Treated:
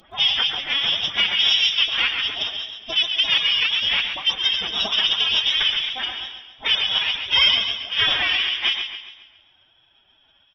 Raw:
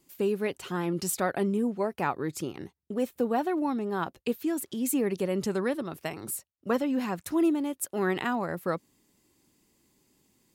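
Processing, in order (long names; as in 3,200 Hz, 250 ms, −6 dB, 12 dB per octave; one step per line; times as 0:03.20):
every frequency bin delayed by itself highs early, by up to 248 ms
Butterworth high-pass 180 Hz 48 dB per octave
in parallel at 0 dB: downward compressor 16 to 1, threshold −42 dBFS, peak gain reduction 21.5 dB
on the sum: harmonic generator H 2 −14 dB, 4 −35 dB, 6 −14 dB, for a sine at −14 dBFS
voice inversion scrambler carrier 3,600 Hz
on a send: repeating echo 117 ms, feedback 31%, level −11 dB
on the sum: phase-vocoder pitch shift with formants kept +8.5 semitones
feedback echo with a swinging delay time 136 ms, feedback 45%, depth 54 cents, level −9 dB
level +6 dB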